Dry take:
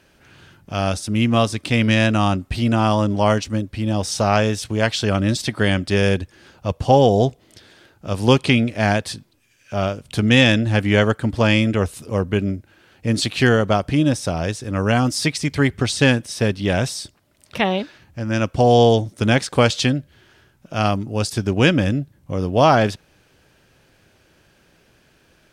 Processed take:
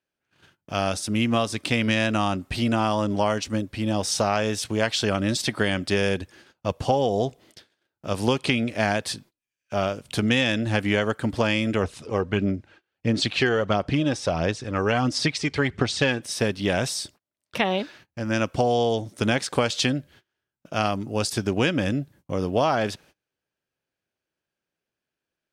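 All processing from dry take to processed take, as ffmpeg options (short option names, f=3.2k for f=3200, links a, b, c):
-filter_complex "[0:a]asettb=1/sr,asplit=3[a][b][c];[a]atrim=end=11.834[d];[b]atrim=start=11.83:end=16.22,asetpts=PTS-STARTPTS,afade=t=in:d=0.004:c=qsin,afade=t=out:st=4.386:d=0.004:c=qsin,aphaser=in_gain=1:out_gain=1:delay=2.6:decay=0.38:speed=1.5:type=sinusoidal,lowpass=5.5k[e];[c]atrim=start=16.216[f];[d][e]acrossfade=d=0.004:c1=hsin:c2=qsin[g];[g][f]acrossfade=d=0.004:c1=qsin:c2=hsin,agate=range=-29dB:threshold=-45dB:ratio=16:detection=peak,lowshelf=f=130:g=-10.5,acompressor=threshold=-18dB:ratio=6"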